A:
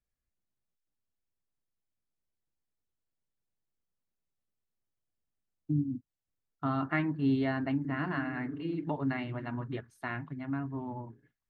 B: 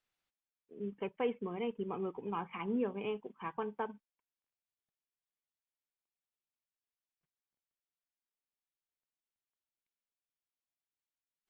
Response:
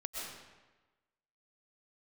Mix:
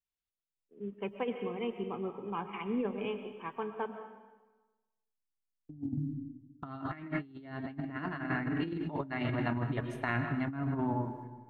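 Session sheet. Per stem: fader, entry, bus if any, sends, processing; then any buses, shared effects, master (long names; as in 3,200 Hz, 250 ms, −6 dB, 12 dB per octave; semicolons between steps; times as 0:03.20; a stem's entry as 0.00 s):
+0.5 dB, 0.00 s, send −6 dB, noise gate with hold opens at −52 dBFS
−6.0 dB, 0.00 s, send −4.5 dB, multiband upward and downward expander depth 40%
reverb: on, RT60 1.2 s, pre-delay 85 ms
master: compressor whose output falls as the input rises −34 dBFS, ratio −0.5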